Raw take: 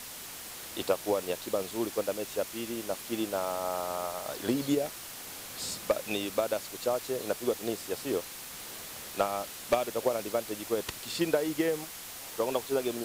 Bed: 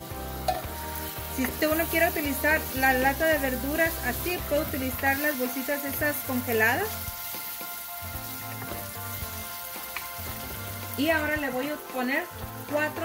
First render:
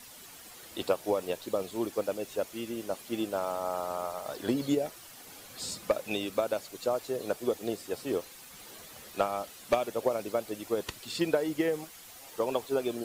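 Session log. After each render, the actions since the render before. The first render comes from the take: denoiser 9 dB, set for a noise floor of -44 dBFS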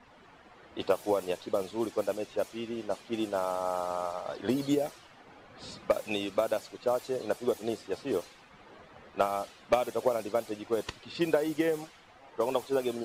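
bell 860 Hz +2 dB 1.2 oct; low-pass opened by the level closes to 1500 Hz, open at -25 dBFS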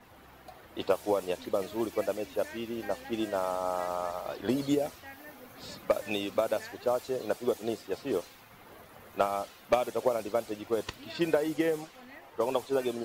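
add bed -23.5 dB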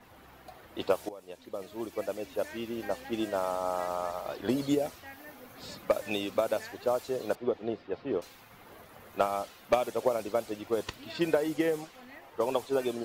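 1.09–2.61 fade in, from -20 dB; 7.35–8.22 air absorption 320 m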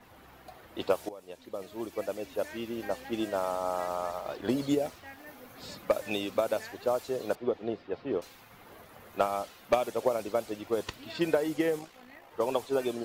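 4.18–5.27 backlash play -53.5 dBFS; 11.79–12.31 AM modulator 58 Hz, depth 35%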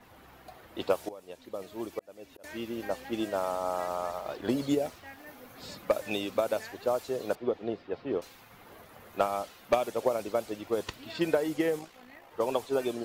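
1.99–2.44 auto swell 0.67 s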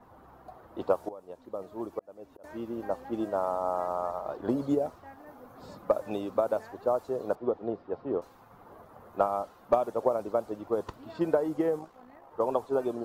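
resonant high shelf 1600 Hz -12 dB, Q 1.5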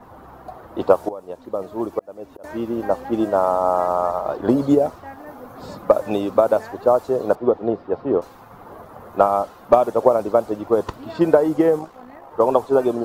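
gain +11.5 dB; limiter -1 dBFS, peak gain reduction 1 dB

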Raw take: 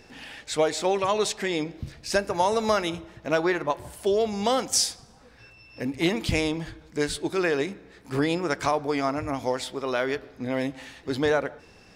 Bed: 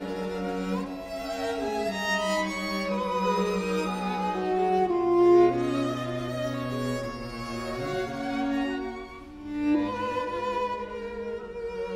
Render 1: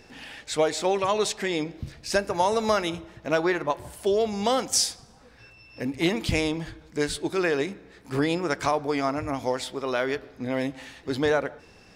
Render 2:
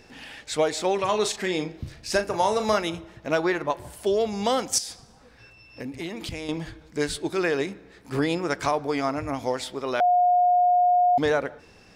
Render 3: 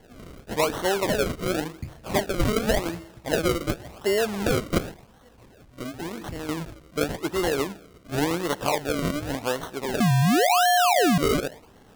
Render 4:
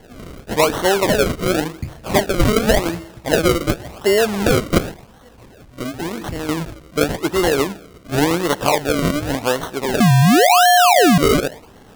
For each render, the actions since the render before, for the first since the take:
nothing audible
0.95–2.78 doubler 38 ms -9 dB; 4.78–6.49 compressor, threshold -30 dBFS; 10–11.18 bleep 716 Hz -16 dBFS
decimation with a swept rate 35×, swing 100% 0.91 Hz
gain +8 dB

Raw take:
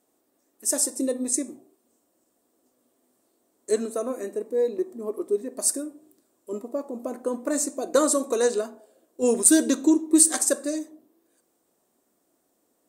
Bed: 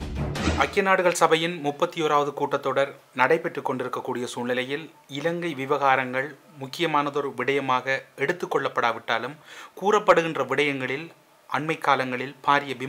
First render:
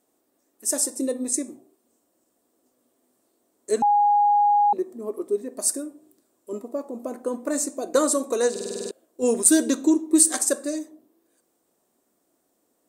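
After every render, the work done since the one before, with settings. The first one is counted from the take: 3.82–4.73 bleep 824 Hz -15 dBFS; 8.51 stutter in place 0.05 s, 8 plays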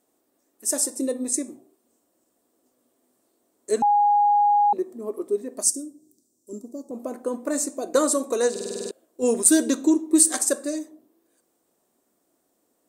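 5.63–6.91 EQ curve 260 Hz 0 dB, 620 Hz -12 dB, 1100 Hz -18 dB, 2300 Hz -27 dB, 5900 Hz +7 dB, 11000 Hz -2 dB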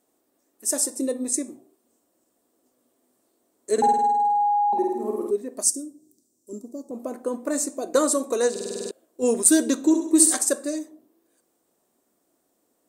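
3.73–5.31 flutter echo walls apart 8.8 m, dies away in 1.1 s; 9.77–10.34 flutter echo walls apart 11.3 m, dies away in 0.69 s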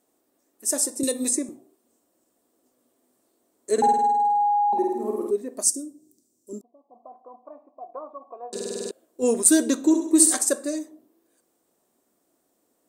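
1.03–1.49 three-band squash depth 100%; 6.61–8.53 vocal tract filter a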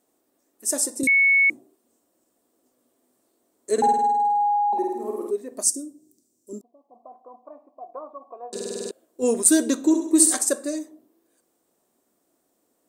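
1.07–1.5 bleep 2210 Hz -14 dBFS; 4.56–5.52 bell 130 Hz -11 dB 1.6 oct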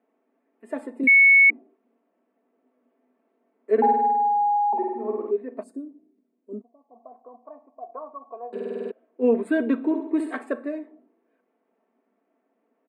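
elliptic band-pass 220–2400 Hz, stop band 40 dB; comb 4.5 ms, depth 52%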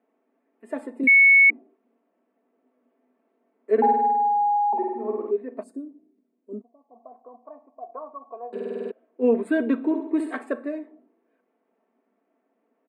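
nothing audible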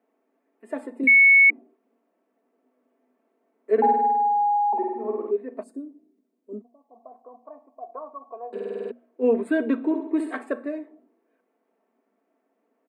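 HPF 160 Hz; notches 60/120/180/240 Hz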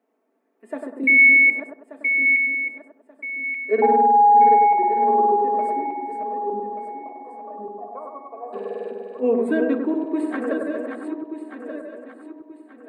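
regenerating reverse delay 0.591 s, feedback 57%, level -6 dB; analogue delay 98 ms, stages 1024, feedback 40%, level -4 dB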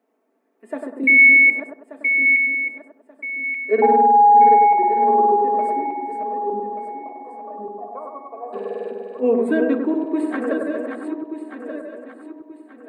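gain +2 dB

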